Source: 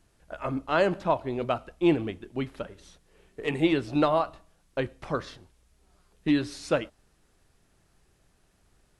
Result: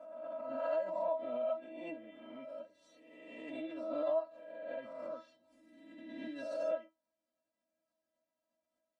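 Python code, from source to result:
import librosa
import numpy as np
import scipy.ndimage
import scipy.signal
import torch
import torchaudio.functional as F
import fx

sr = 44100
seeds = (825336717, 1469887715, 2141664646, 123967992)

p1 = fx.spec_swells(x, sr, rise_s=1.0)
p2 = fx.tilt_eq(p1, sr, slope=3.5)
p3 = fx.rider(p2, sr, range_db=5, speed_s=0.5)
p4 = p2 + (p3 * 10.0 ** (2.5 / 20.0))
p5 = fx.double_bandpass(p4, sr, hz=360.0, octaves=1.2)
p6 = fx.stiff_resonator(p5, sr, f0_hz=320.0, decay_s=0.21, stiffness=0.002)
p7 = fx.pre_swell(p6, sr, db_per_s=35.0)
y = p7 * 10.0 ** (1.5 / 20.0)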